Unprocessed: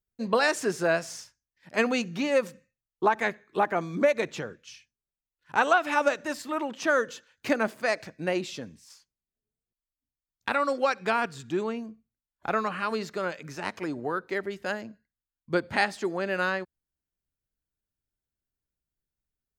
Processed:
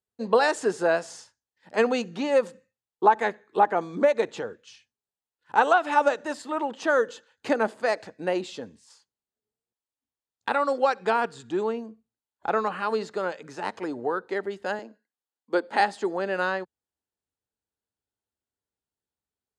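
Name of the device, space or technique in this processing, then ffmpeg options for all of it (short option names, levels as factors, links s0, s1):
car door speaker: -filter_complex "[0:a]highpass=100,equalizer=f=150:t=q:w=4:g=-9,equalizer=f=460:t=q:w=4:g=6,equalizer=f=840:t=q:w=4:g=7,equalizer=f=2300:t=q:w=4:g=-6,equalizer=f=5700:t=q:w=4:g=-6,lowpass=f=9400:w=0.5412,lowpass=f=9400:w=1.3066,asettb=1/sr,asplit=3[s0][s1][s2];[s0]atrim=end=14.794[s3];[s1]atrim=start=14.79:end=15.8,asetpts=PTS-STARTPTS,afade=t=in:d=0.004:c=qsin,afade=t=out:st=1.006:d=0.004:c=qsin,highpass=f=240:w=0.5412,highpass=f=240:w=1.3066[s4];[s2]atrim=start=15.796[s5];[s3][s4]acrossfade=d=0.004:c1=hsin:c2=qsin[s6];[s6][s5]acrossfade=d=0.004:c1=qsin:c2=hsin"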